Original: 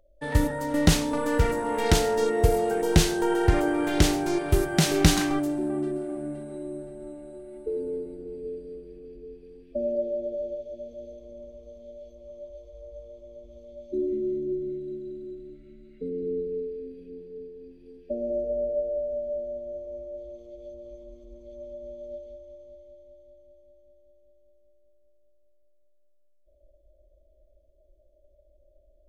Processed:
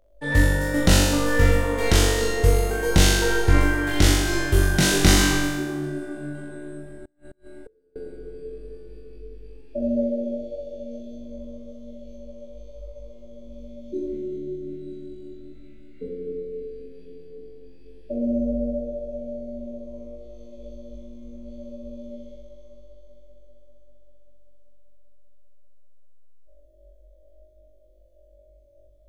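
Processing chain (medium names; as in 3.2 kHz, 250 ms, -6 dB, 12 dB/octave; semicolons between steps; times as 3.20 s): flutter echo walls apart 3.6 m, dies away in 1.1 s; 7.05–7.96 s: inverted gate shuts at -31 dBFS, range -32 dB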